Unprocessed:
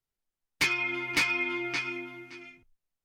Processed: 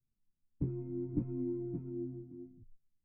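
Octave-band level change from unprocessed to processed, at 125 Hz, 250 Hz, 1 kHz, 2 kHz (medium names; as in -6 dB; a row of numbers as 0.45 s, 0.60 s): +9.5 dB, +1.0 dB, under -25 dB, under -40 dB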